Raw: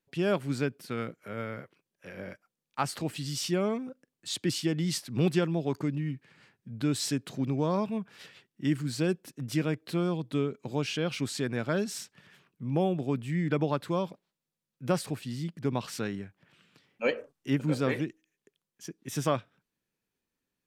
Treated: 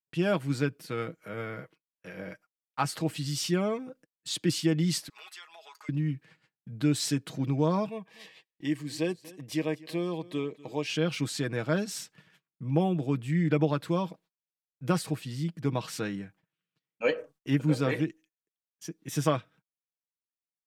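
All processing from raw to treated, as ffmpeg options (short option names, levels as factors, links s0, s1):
-filter_complex "[0:a]asettb=1/sr,asplit=3[s0][s1][s2];[s0]atrim=end=5.094[s3];[s1]atrim=start=5.09:end=5.89,asetpts=PTS-STARTPTS,afade=t=in:d=0.004:c=qsin,afade=t=out:st=0.796:d=0.004:c=qsin,highpass=f=950:w=0.5412,highpass=f=950:w=1.3066,aecho=1:1:4.8:0.66,atrim=end_sample=35280,acompressor=threshold=0.00398:ratio=3:attack=3.2:release=140:knee=1:detection=peak[s4];[s2]atrim=start=5.886[s5];[s3][s4]acrossfade=d=0.004:c1=hsin:c2=qsin[s6];[s6][s5]acrossfade=d=0.004:c1=qsin:c2=hsin,asettb=1/sr,asplit=3[s7][s8][s9];[s7]atrim=end=7.894[s10];[s8]atrim=start=7.89:end=10.9,asetpts=PTS-STARTPTS,afade=t=in:d=0.004:c=qsin,afade=t=out:st=3.006:d=0.004:c=qsin,asuperstop=centerf=1400:order=4:qfactor=3.4,bass=f=250:g=-12,treble=f=4000:g=-3,aecho=1:1:244:0.0944,atrim=end_sample=132741[s11];[s9]atrim=start=10.896[s12];[s10][s11]acrossfade=d=0.004:c1=hsin:c2=qsin[s13];[s13][s12]acrossfade=d=0.004:c1=qsin:c2=hsin,agate=range=0.0398:threshold=0.00158:ratio=16:detection=peak,aecho=1:1:6.3:0.51"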